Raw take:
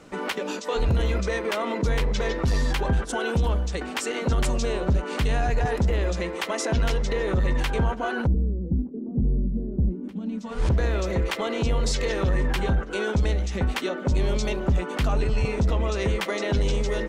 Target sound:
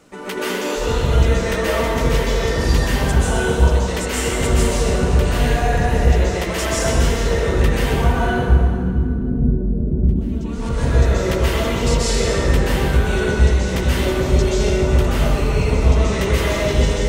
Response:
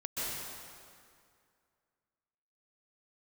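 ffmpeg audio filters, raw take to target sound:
-filter_complex "[0:a]highshelf=frequency=8100:gain=11[link_01];[1:a]atrim=start_sample=2205[link_02];[link_01][link_02]afir=irnorm=-1:irlink=0,volume=1.5dB"

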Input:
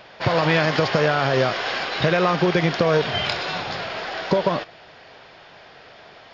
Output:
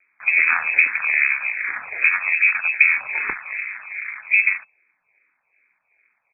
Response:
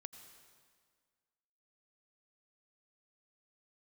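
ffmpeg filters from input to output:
-filter_complex "[0:a]afwtdn=0.0316,asplit=2[link_01][link_02];[link_02]adynamicsmooth=sensitivity=1.5:basefreq=1200,volume=2.5dB[link_03];[link_01][link_03]amix=inputs=2:normalize=0,asetrate=22696,aresample=44100,atempo=1.94306,aeval=exprs='val(0)*sin(2*PI*100*n/s)':channel_layout=same,lowpass=frequency=2200:width_type=q:width=0.5098,lowpass=frequency=2200:width_type=q:width=0.6013,lowpass=frequency=2200:width_type=q:width=0.9,lowpass=frequency=2200:width_type=q:width=2.563,afreqshift=-2600,asplit=2[link_04][link_05];[link_05]afreqshift=-2.5[link_06];[link_04][link_06]amix=inputs=2:normalize=1"

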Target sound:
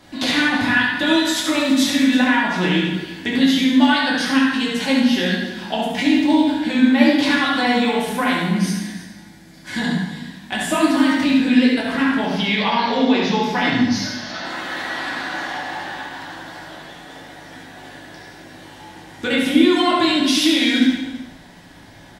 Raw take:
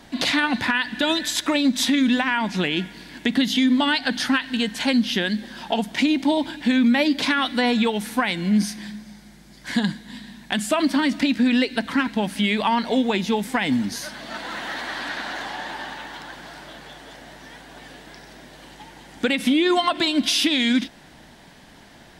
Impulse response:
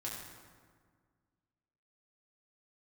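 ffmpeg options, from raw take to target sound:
-filter_complex "[0:a]asettb=1/sr,asplit=3[link_01][link_02][link_03];[link_01]atrim=end=12.244[link_04];[link_02]atrim=start=12.24:end=14.45,asetpts=PTS-STARTPTS,afade=type=in:duration=0.004:curve=qsin,afade=type=out:start_time=2.206:duration=0.004:curve=qsin,highshelf=frequency=6900:width_type=q:width=3:gain=-9.5[link_05];[link_03]atrim=start=14.446[link_06];[link_04][link_05]acrossfade=duration=0.004:curve1=hsin:curve2=qsin[link_07];[link_07][link_06]acrossfade=duration=0.004:curve1=qsin:curve2=hsin,aecho=1:1:71|330:0.501|0.178[link_08];[1:a]atrim=start_sample=2205,afade=type=out:start_time=0.31:duration=0.01,atrim=end_sample=14112[link_09];[link_08][link_09]afir=irnorm=-1:irlink=0,volume=2.5dB"

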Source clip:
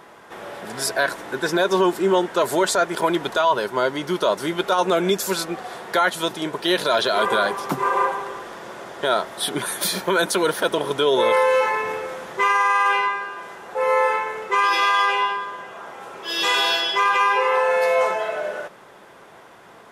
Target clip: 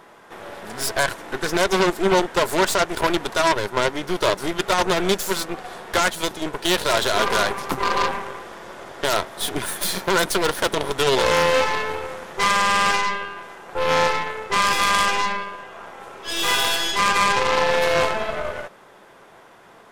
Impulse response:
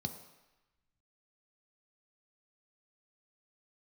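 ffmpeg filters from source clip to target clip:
-af "aeval=exprs='0.473*(cos(1*acos(clip(val(0)/0.473,-1,1)))-cos(1*PI/2))+0.211*(cos(6*acos(clip(val(0)/0.473,-1,1)))-cos(6*PI/2))+0.211*(cos(8*acos(clip(val(0)/0.473,-1,1)))-cos(8*PI/2))':channel_layout=same,volume=-2dB"

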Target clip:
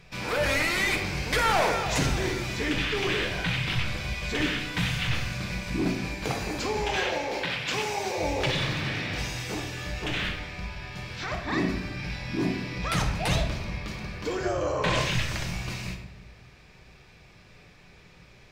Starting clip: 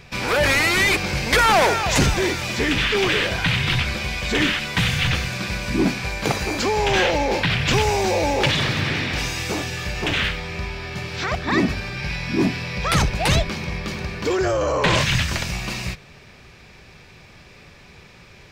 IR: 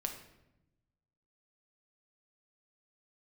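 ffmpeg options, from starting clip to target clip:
-filter_complex "[0:a]asettb=1/sr,asplit=3[link_01][link_02][link_03];[link_01]atrim=end=6.854[link_04];[link_02]atrim=start=6.85:end=8.18,asetpts=PTS-STARTPTS,afade=type=in:duration=0.004:curve=qsin,afade=type=out:start_time=1.326:duration=0.004:curve=qsin,highpass=frequency=420:poles=1[link_05];[link_03]atrim=start=8.176[link_06];[link_04][link_05]acrossfade=duration=0.004:curve1=hsin:curve2=qsin[link_07];[link_07][link_06]acrossfade=duration=0.004:curve1=qsin:curve2=hsin[link_08];[1:a]atrim=start_sample=2205,asetrate=39690,aresample=44100[link_09];[link_08][link_09]afir=irnorm=-1:irlink=0,volume=-8.5dB"

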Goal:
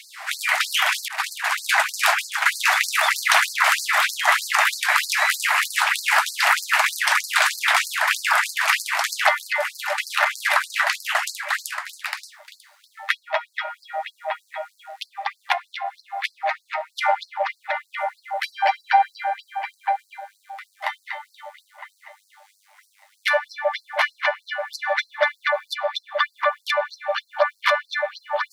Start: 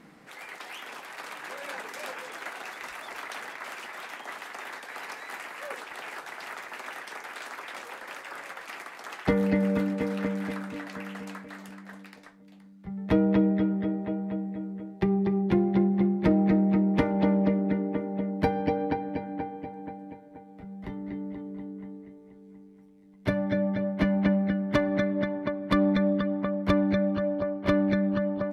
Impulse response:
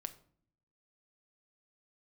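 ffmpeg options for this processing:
-filter_complex "[0:a]asettb=1/sr,asplit=3[link_01][link_02][link_03];[link_01]atrim=end=1.084[link_04];[link_02]atrim=start=1.08:end=2.53,asetpts=PTS-STARTPTS,afade=type=in:duration=0.004:curve=qsin,afade=type=out:start_time=1.446:duration=0.004:curve=qsin,agate=range=-33dB:threshold=-34dB:ratio=3:detection=peak[link_05];[link_03]atrim=start=2.526[link_06];[link_04][link_05]acrossfade=duration=0.004:curve1=hsin:curve2=qsin[link_07];[link_07][link_06]acrossfade=duration=0.004:curve1=qsin:curve2=hsin,alimiter=level_in=23dB:limit=-1dB:release=50:level=0:latency=1,afftfilt=real='re*gte(b*sr/1024,580*pow(4200/580,0.5+0.5*sin(2*PI*3.2*pts/sr)))':imag='im*gte(b*sr/1024,580*pow(4200/580,0.5+0.5*sin(2*PI*3.2*pts/sr)))':win_size=1024:overlap=0.75"

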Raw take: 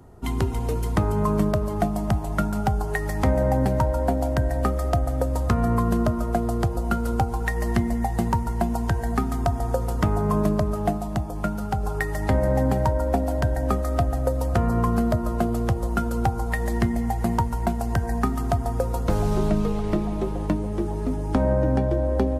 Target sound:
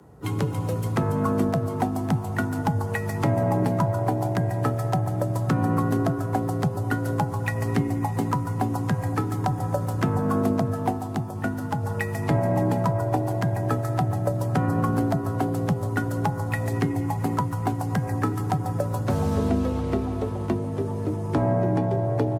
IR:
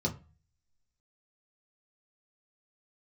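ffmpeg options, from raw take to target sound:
-filter_complex "[0:a]asplit=4[link_01][link_02][link_03][link_04];[link_02]asetrate=33038,aresample=44100,atempo=1.33484,volume=-16dB[link_05];[link_03]asetrate=55563,aresample=44100,atempo=0.793701,volume=-17dB[link_06];[link_04]asetrate=58866,aresample=44100,atempo=0.749154,volume=-14dB[link_07];[link_01][link_05][link_06][link_07]amix=inputs=4:normalize=0,afreqshift=50,volume=-2dB"

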